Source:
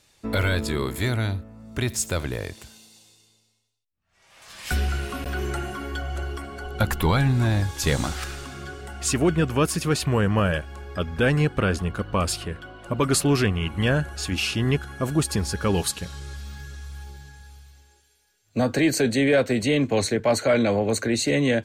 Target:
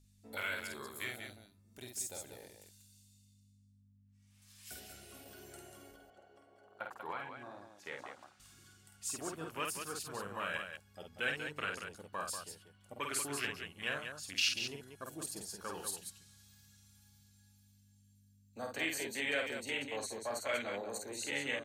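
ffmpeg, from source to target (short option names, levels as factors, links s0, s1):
-filter_complex "[0:a]afwtdn=0.0398,aderivative,aeval=exprs='val(0)+0.000447*(sin(2*PI*50*n/s)+sin(2*PI*2*50*n/s)/2+sin(2*PI*3*50*n/s)/3+sin(2*PI*4*50*n/s)/4+sin(2*PI*5*50*n/s)/5)':c=same,asettb=1/sr,asplit=3[s0][s1][s2];[s0]atrim=end=5.914[s3];[s1]atrim=start=5.91:end=8.4,asetpts=PTS-STARTPTS,afade=t=in:d=0.004:c=qsin,afade=t=out:st=2.486:d=0.004:c=qsin,bandpass=f=640:t=q:w=0.74:csg=0[s4];[s2]atrim=start=8.396[s5];[s3][s4]acrossfade=d=0.004:c1=hsin:c2=qsin[s6];[s6][s5]acrossfade=d=0.004:c1=qsin:c2=hsin,aecho=1:1:49.56|189.5:0.631|0.447,volume=1.26"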